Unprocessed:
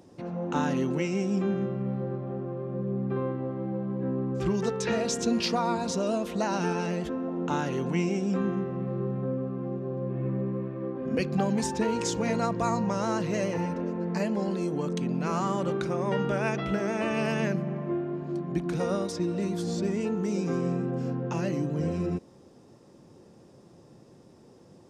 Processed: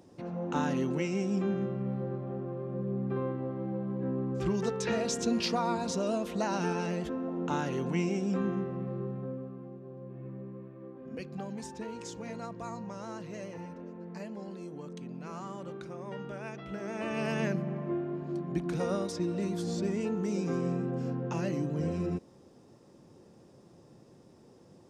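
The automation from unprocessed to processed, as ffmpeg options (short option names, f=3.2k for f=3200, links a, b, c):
-af "volume=7dB,afade=t=out:st=8.61:d=1.11:silence=0.316228,afade=t=in:st=16.65:d=0.77:silence=0.316228"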